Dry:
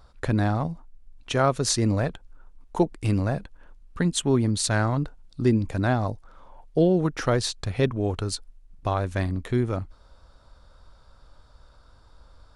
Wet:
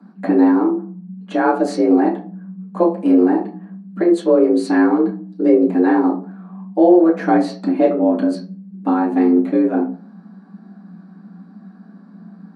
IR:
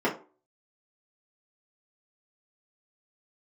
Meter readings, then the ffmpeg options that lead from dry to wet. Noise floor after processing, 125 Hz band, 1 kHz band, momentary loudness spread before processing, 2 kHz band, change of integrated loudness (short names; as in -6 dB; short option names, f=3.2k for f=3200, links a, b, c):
-43 dBFS, n/a, +9.0 dB, 11 LU, +4.0 dB, +9.5 dB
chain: -filter_complex "[0:a]afreqshift=170[a];[1:a]atrim=start_sample=2205,asetrate=36162,aresample=44100[b];[a][b]afir=irnorm=-1:irlink=0,volume=-10dB"